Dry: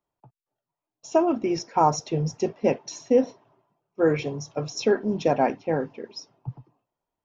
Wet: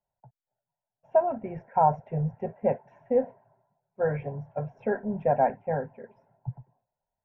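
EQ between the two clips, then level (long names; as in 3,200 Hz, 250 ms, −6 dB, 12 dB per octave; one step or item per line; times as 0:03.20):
Chebyshev low-pass filter 1,500 Hz, order 3
notch filter 460 Hz, Q 12
phaser with its sweep stopped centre 1,200 Hz, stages 6
+1.5 dB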